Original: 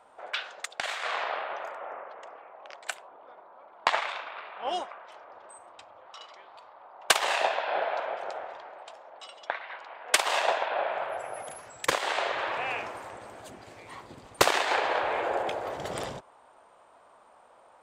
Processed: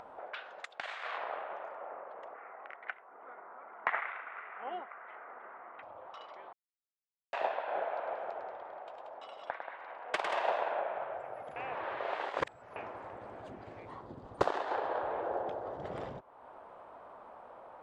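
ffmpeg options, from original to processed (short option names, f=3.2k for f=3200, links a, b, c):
-filter_complex "[0:a]asettb=1/sr,asplit=3[a][b][c];[a]atrim=end=0.584[d];[b]atrim=start=0.58:end=1.18,asetpts=PTS-STARTPTS,afade=t=in:d=0.004:c=qsin,afade=t=out:st=0.596:d=0.004:c=qsin,tiltshelf=f=1.1k:g=-5.5[e];[c]atrim=start=1.176[f];[d][e]acrossfade=d=0.004:c1=hsin:c2=qsin[g];[g][f]acrossfade=d=0.004:c1=qsin:c2=hsin,asettb=1/sr,asplit=3[h][i][j];[h]atrim=end=2.344[k];[i]atrim=start=2.34:end=5.83,asetpts=PTS-STARTPTS,afade=t=in:d=0.004:c=qsin,afade=t=out:st=3.486:d=0.004:c=qsin,highpass=f=150:w=0.5412,highpass=f=150:w=1.3066,equalizer=f=170:t=q:w=4:g=-7,equalizer=f=320:t=q:w=4:g=-5,equalizer=f=580:t=q:w=4:g=-8,equalizer=f=920:t=q:w=4:g=-4,equalizer=f=1.4k:t=q:w=4:g=6,equalizer=f=2k:t=q:w=4:g=10,lowpass=f=2.7k:w=0.5412,lowpass=f=2.7k:w=1.3066[l];[j]atrim=start=5.826[m];[k][l]acrossfade=d=0.004:c1=hsin:c2=qsin[n];[n][m]acrossfade=d=0.004:c1=qsin:c2=hsin,asettb=1/sr,asplit=3[o][p][q];[o]atrim=end=7.934[r];[p]atrim=start=7.93:end=10.8,asetpts=PTS-STARTPTS,afade=t=in:d=0.004:c=qsin,afade=t=out:st=2.866:d=0.004:c=qsin,aecho=1:1:103|182:0.501|0.398,atrim=end_sample=126567[s];[q]atrim=start=10.796[t];[r][s]acrossfade=d=0.004:c1=hsin:c2=qsin[u];[u][t]acrossfade=d=0.004:c1=qsin:c2=hsin,asettb=1/sr,asplit=3[v][w][x];[v]atrim=end=13.854[y];[w]atrim=start=13.85:end=15.83,asetpts=PTS-STARTPTS,afade=t=in:d=0.004:c=qsin,afade=t=out:st=1.976:d=0.004:c=qsin,equalizer=f=2.3k:t=o:w=0.71:g=-9.5[z];[x]atrim=start=15.826[aa];[y][z]acrossfade=d=0.004:c1=hsin:c2=qsin[ab];[ab][aa]acrossfade=d=0.004:c1=qsin:c2=hsin,asplit=5[ac][ad][ae][af][ag];[ac]atrim=end=6.53,asetpts=PTS-STARTPTS,afade=t=out:st=6.526:d=0.004:c=hsin[ah];[ad]atrim=start=6.53:end=7.33,asetpts=PTS-STARTPTS,volume=0[ai];[ae]atrim=start=7.33:end=11.562,asetpts=PTS-STARTPTS,afade=t=in:d=0.004:c=hsin[aj];[af]atrim=start=11.558:end=12.762,asetpts=PTS-STARTPTS,areverse[ak];[ag]atrim=start=12.758[al];[ah][ai][aj]concat=n=3:v=0:a=1[am];[am][ak]acrossfade=d=0.004:c1=hsin:c2=hsin[an];[an][al]acrossfade=d=0.004:c1=hsin:c2=hsin,lowpass=f=1.3k:p=1,aemphasis=mode=reproduction:type=50kf,acompressor=mode=upward:threshold=-35dB:ratio=2.5,volume=-4.5dB"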